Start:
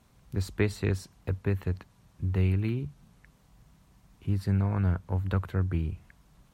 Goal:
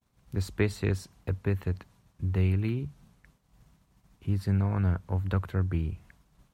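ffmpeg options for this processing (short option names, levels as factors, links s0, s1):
-af "agate=range=0.0224:threshold=0.002:ratio=3:detection=peak"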